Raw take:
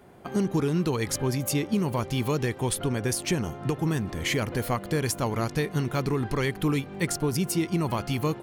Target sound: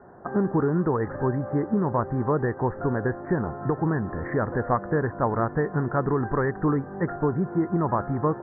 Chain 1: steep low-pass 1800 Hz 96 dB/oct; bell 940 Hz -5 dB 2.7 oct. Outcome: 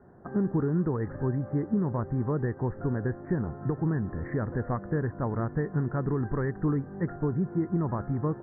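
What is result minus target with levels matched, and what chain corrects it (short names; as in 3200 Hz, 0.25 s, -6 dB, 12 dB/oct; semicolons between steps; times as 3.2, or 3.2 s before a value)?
1000 Hz band -6.5 dB
steep low-pass 1800 Hz 96 dB/oct; bell 940 Hz +6 dB 2.7 oct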